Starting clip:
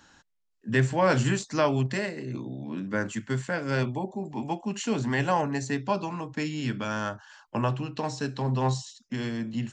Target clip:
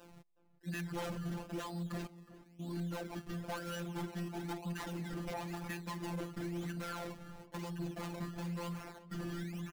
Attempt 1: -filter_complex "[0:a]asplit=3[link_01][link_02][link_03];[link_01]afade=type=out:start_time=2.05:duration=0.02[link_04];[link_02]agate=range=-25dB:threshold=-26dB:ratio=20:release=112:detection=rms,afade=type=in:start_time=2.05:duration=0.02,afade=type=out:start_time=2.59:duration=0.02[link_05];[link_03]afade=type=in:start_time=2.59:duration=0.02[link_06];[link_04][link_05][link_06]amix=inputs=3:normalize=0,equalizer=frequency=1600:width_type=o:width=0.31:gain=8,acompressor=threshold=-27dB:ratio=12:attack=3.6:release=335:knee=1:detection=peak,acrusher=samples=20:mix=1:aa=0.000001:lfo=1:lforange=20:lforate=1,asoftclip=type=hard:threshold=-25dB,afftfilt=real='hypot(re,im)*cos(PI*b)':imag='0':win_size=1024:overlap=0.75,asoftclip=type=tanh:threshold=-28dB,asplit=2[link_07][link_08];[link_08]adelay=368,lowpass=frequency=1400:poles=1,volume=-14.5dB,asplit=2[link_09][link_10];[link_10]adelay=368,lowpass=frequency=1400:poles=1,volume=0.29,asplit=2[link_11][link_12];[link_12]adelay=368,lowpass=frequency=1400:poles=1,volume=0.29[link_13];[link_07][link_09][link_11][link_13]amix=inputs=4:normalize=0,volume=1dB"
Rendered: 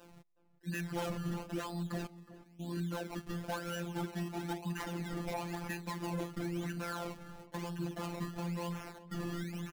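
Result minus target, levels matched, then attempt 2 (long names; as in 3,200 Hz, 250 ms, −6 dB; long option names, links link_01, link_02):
soft clipping: distortion −5 dB
-filter_complex "[0:a]asplit=3[link_01][link_02][link_03];[link_01]afade=type=out:start_time=2.05:duration=0.02[link_04];[link_02]agate=range=-25dB:threshold=-26dB:ratio=20:release=112:detection=rms,afade=type=in:start_time=2.05:duration=0.02,afade=type=out:start_time=2.59:duration=0.02[link_05];[link_03]afade=type=in:start_time=2.59:duration=0.02[link_06];[link_04][link_05][link_06]amix=inputs=3:normalize=0,equalizer=frequency=1600:width_type=o:width=0.31:gain=8,acompressor=threshold=-27dB:ratio=12:attack=3.6:release=335:knee=1:detection=peak,acrusher=samples=20:mix=1:aa=0.000001:lfo=1:lforange=20:lforate=1,asoftclip=type=hard:threshold=-25dB,afftfilt=real='hypot(re,im)*cos(PI*b)':imag='0':win_size=1024:overlap=0.75,asoftclip=type=tanh:threshold=-34.5dB,asplit=2[link_07][link_08];[link_08]adelay=368,lowpass=frequency=1400:poles=1,volume=-14.5dB,asplit=2[link_09][link_10];[link_10]adelay=368,lowpass=frequency=1400:poles=1,volume=0.29,asplit=2[link_11][link_12];[link_12]adelay=368,lowpass=frequency=1400:poles=1,volume=0.29[link_13];[link_07][link_09][link_11][link_13]amix=inputs=4:normalize=0,volume=1dB"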